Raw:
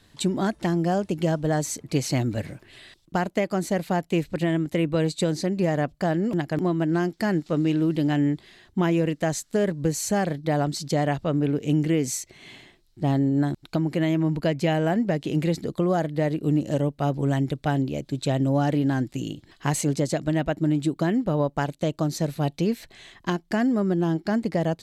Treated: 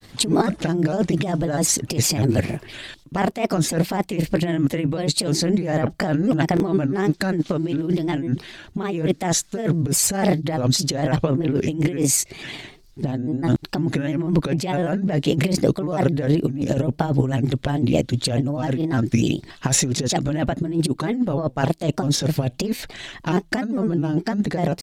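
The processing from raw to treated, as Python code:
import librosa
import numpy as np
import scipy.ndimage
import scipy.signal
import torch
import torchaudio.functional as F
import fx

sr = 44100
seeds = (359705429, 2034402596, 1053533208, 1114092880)

y = fx.over_compress(x, sr, threshold_db=-26.0, ratio=-0.5)
y = fx.granulator(y, sr, seeds[0], grain_ms=100.0, per_s=20.0, spray_ms=16.0, spread_st=3)
y = y * librosa.db_to_amplitude(8.5)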